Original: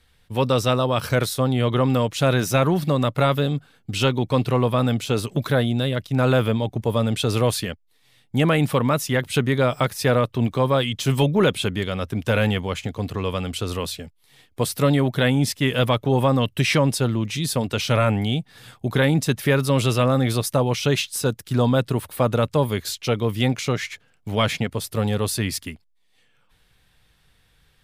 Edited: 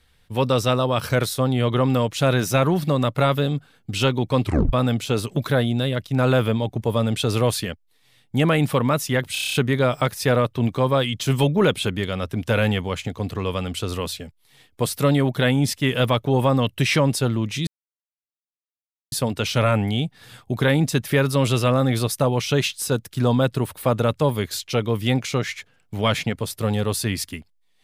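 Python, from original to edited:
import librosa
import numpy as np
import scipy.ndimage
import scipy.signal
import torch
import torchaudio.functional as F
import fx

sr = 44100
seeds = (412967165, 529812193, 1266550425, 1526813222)

y = fx.edit(x, sr, fx.tape_stop(start_s=4.44, length_s=0.29),
    fx.stutter(start_s=9.33, slice_s=0.03, count=8),
    fx.insert_silence(at_s=17.46, length_s=1.45), tone=tone)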